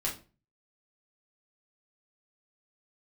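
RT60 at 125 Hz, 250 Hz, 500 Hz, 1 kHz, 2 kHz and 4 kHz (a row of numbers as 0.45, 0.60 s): 0.55, 0.45, 0.35, 0.30, 0.30, 0.25 s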